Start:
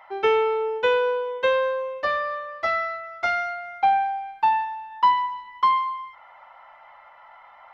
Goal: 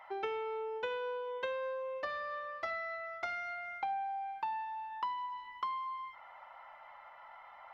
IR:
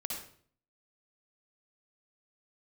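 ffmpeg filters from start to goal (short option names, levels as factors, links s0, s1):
-filter_complex "[0:a]asplit=2[s0][s1];[1:a]atrim=start_sample=2205,atrim=end_sample=3528[s2];[s1][s2]afir=irnorm=-1:irlink=0,volume=0.447[s3];[s0][s3]amix=inputs=2:normalize=0,acompressor=threshold=0.0355:ratio=5,volume=0.422"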